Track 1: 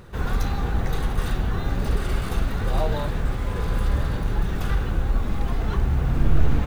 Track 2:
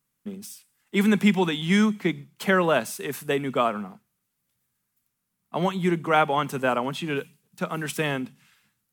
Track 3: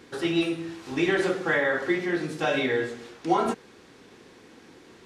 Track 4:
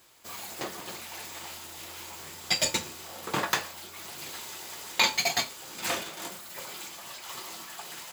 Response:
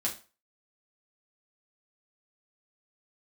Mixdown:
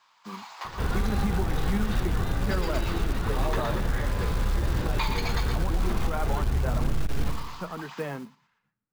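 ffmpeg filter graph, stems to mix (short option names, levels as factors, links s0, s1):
-filter_complex "[0:a]adelay=650,volume=1.06,asplit=2[s0][s1];[s1]volume=0.2[s2];[1:a]lowpass=1500,flanger=delay=1.9:depth=4.8:regen=53:speed=1.9:shape=triangular,volume=0.794,asplit=2[s3][s4];[2:a]acompressor=threshold=0.0398:ratio=6,acrossover=split=1500[s5][s6];[s5]aeval=exprs='val(0)*(1-0.7/2+0.7/2*cos(2*PI*3.7*n/s))':c=same[s7];[s6]aeval=exprs='val(0)*(1-0.7/2-0.7/2*cos(2*PI*3.7*n/s))':c=same[s8];[s7][s8]amix=inputs=2:normalize=0,adelay=2450,volume=0.891,asplit=3[s9][s10][s11];[s9]atrim=end=4.06,asetpts=PTS-STARTPTS,afade=t=out:st=4.056:d=0.004:c=hsin[s12];[s10]atrim=start=4.06:end=4.57,asetpts=PTS-STARTPTS,volume=0[s13];[s11]atrim=start=4.57,asetpts=PTS-STARTPTS,afade=t=in:d=0.004:c=hsin[s14];[s12][s13][s14]concat=n=3:v=0:a=1,asplit=2[s15][s16];[s16]volume=0.422[s17];[3:a]highpass=f=1000:t=q:w=3.9,volume=0.596,asplit=2[s18][s19];[s19]volume=0.335[s20];[s4]apad=whole_len=358236[s21];[s18][s21]sidechaincompress=threshold=0.0224:ratio=8:attack=16:release=512[s22];[s2][s17][s20]amix=inputs=3:normalize=0,aecho=0:1:118|236|354|472|590:1|0.39|0.152|0.0593|0.0231[s23];[s0][s3][s15][s22][s23]amix=inputs=5:normalize=0,lowpass=f=5700:w=0.5412,lowpass=f=5700:w=1.3066,acrusher=bits=5:mode=log:mix=0:aa=0.000001,alimiter=limit=0.141:level=0:latency=1:release=102"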